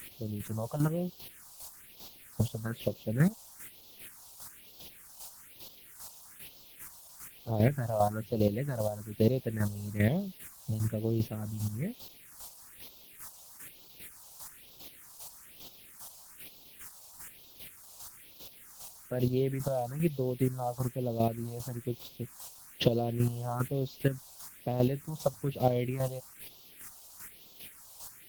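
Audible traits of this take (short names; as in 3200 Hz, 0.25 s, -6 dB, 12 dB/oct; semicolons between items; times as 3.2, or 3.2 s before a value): a quantiser's noise floor 8-bit, dither triangular; phasing stages 4, 1.1 Hz, lowest notch 310–1800 Hz; chopped level 2.5 Hz, depth 60%, duty 20%; Opus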